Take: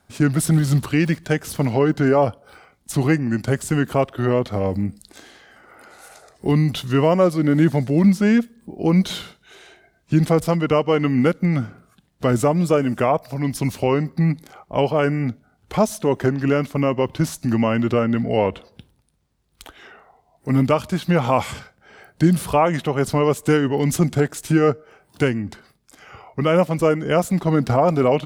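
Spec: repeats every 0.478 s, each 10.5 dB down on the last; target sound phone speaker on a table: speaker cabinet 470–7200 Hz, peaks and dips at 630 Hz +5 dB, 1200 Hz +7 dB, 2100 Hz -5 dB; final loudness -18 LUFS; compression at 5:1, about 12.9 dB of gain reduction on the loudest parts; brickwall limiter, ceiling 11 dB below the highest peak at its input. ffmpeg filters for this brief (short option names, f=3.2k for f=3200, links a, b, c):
-af "acompressor=threshold=-26dB:ratio=5,alimiter=limit=-23.5dB:level=0:latency=1,highpass=f=470:w=0.5412,highpass=f=470:w=1.3066,equalizer=f=630:t=q:w=4:g=5,equalizer=f=1.2k:t=q:w=4:g=7,equalizer=f=2.1k:t=q:w=4:g=-5,lowpass=f=7.2k:w=0.5412,lowpass=f=7.2k:w=1.3066,aecho=1:1:478|956|1434:0.299|0.0896|0.0269,volume=20.5dB"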